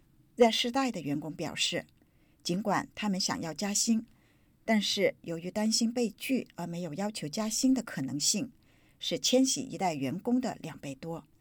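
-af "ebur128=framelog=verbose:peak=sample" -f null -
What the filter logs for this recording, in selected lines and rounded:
Integrated loudness:
  I:         -30.3 LUFS
  Threshold: -41.0 LUFS
Loudness range:
  LRA:         2.0 LU
  Threshold: -51.0 LUFS
  LRA low:   -32.1 LUFS
  LRA high:  -30.1 LUFS
Sample peak:
  Peak:      -12.0 dBFS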